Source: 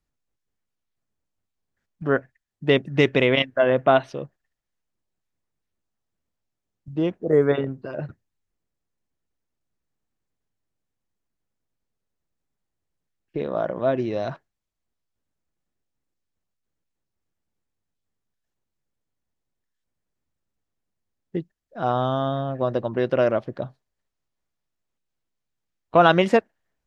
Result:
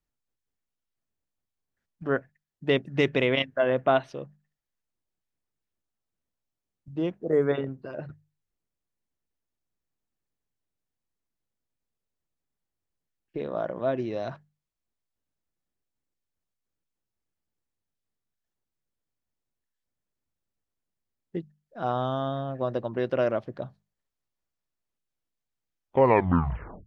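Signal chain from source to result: tape stop at the end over 1.09 s; notches 50/100/150/200 Hz; gain -5 dB

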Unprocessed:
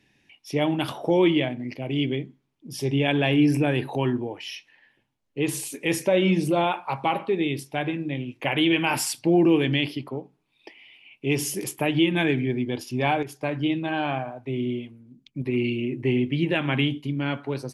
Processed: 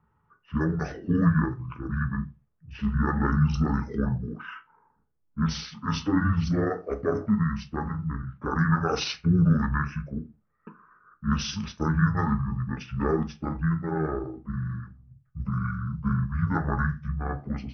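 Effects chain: delay-line pitch shifter -11.5 st; low-pass opened by the level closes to 1100 Hz, open at -22 dBFS; on a send: reverb RT60 0.25 s, pre-delay 5 ms, DRR 8 dB; on the sum: gain -2 dB

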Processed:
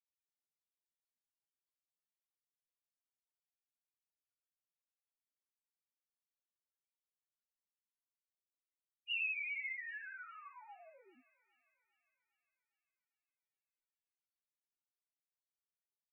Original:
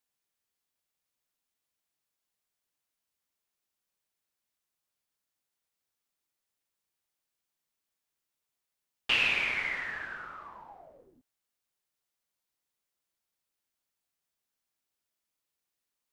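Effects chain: loudest bins only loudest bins 1; thinning echo 0.403 s, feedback 59%, high-pass 560 Hz, level -24 dB; gain +2.5 dB

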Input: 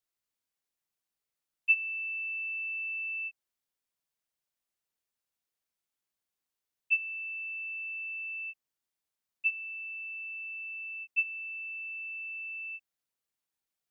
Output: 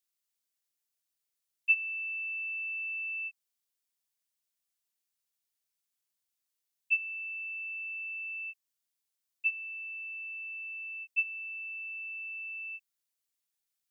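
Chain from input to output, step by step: high shelf 2400 Hz +11.5 dB; gain -7 dB

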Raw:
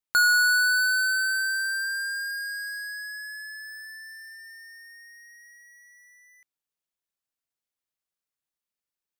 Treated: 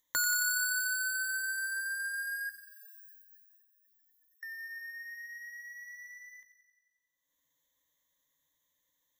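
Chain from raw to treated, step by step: 2.49–4.43 spectral gate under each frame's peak -25 dB weak; gate -58 dBFS, range -37 dB; ripple EQ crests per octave 1.1, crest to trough 18 dB; upward compressor, threshold -37 dBFS; thin delay 90 ms, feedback 67%, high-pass 2200 Hz, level -9.5 dB; gain -5.5 dB

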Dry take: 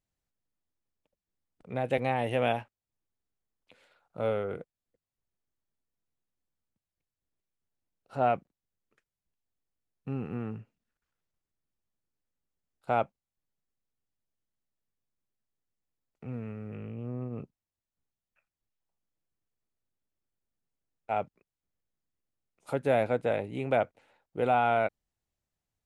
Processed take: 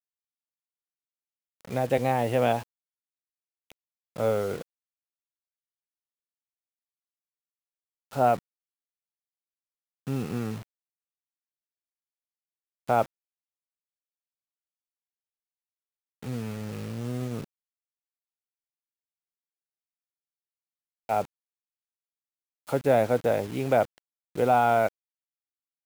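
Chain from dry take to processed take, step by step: dynamic EQ 2500 Hz, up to -6 dB, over -46 dBFS, Q 1.3; requantised 8-bit, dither none; gain +4.5 dB

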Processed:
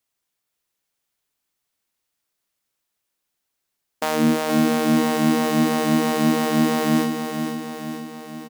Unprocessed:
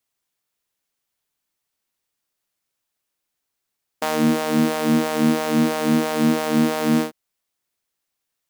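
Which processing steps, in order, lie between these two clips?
feedback echo 0.473 s, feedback 58%, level -7 dB

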